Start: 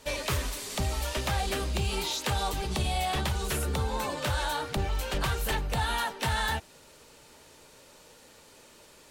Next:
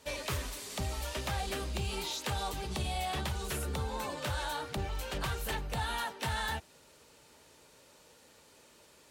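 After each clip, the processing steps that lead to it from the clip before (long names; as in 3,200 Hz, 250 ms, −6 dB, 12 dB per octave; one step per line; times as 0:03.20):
high-pass filter 42 Hz
level −5.5 dB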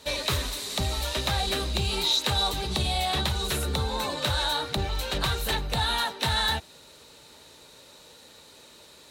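parametric band 3,900 Hz +13 dB 0.21 octaves
level +7 dB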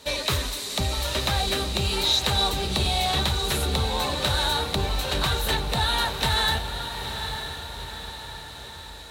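feedback delay with all-pass diffusion 909 ms, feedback 53%, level −8 dB
level +2 dB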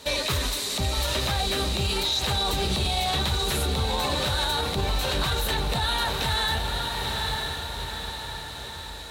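brickwall limiter −19.5 dBFS, peak gain reduction 9.5 dB
level +3 dB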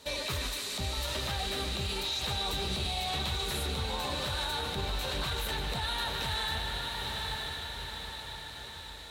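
feedback echo with a band-pass in the loop 150 ms, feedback 80%, band-pass 2,500 Hz, level −5 dB
level −8.5 dB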